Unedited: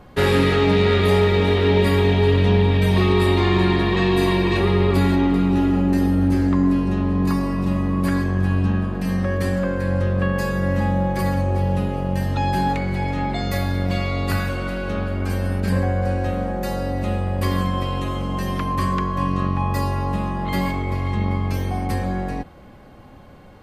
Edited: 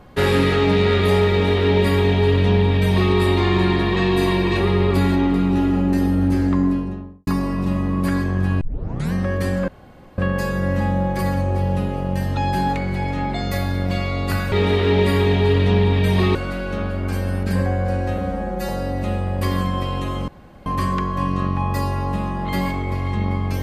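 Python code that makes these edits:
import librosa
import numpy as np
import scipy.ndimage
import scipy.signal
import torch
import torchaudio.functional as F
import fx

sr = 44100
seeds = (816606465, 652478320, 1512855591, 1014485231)

y = fx.studio_fade_out(x, sr, start_s=6.53, length_s=0.74)
y = fx.edit(y, sr, fx.duplicate(start_s=1.3, length_s=1.83, to_s=14.52),
    fx.tape_start(start_s=8.61, length_s=0.52),
    fx.room_tone_fill(start_s=9.68, length_s=0.5),
    fx.stretch_span(start_s=16.35, length_s=0.34, factor=1.5),
    fx.room_tone_fill(start_s=18.28, length_s=0.38), tone=tone)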